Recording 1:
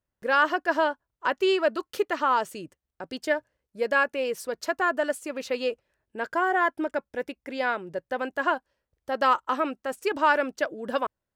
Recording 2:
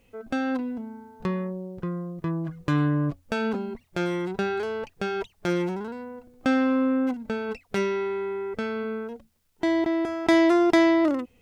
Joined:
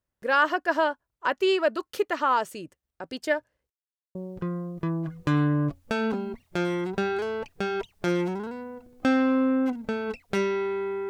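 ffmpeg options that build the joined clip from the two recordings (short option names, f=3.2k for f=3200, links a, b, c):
-filter_complex "[0:a]apad=whole_dur=11.09,atrim=end=11.09,asplit=2[a][b];[a]atrim=end=3.7,asetpts=PTS-STARTPTS,afade=t=out:st=3.696:d=0.004:c=hsin[c];[b]atrim=start=3.7:end=4.15,asetpts=PTS-STARTPTS,volume=0[d];[1:a]atrim=start=1.56:end=8.5,asetpts=PTS-STARTPTS,afade=t=in:d=0.004:c=hsin[e];[c][d][e]concat=n=3:v=0:a=1"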